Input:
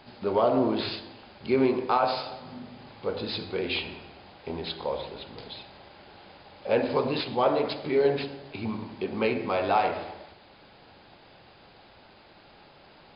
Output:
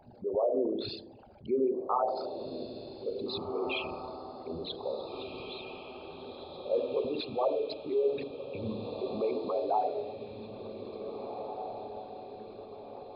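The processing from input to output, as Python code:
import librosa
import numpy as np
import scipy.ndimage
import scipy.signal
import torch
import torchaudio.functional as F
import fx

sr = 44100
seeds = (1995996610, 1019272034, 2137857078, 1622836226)

y = fx.envelope_sharpen(x, sr, power=3.0)
y = fx.echo_diffused(y, sr, ms=1856, feedback_pct=51, wet_db=-8.0)
y = F.gain(torch.from_numpy(y), -5.5).numpy()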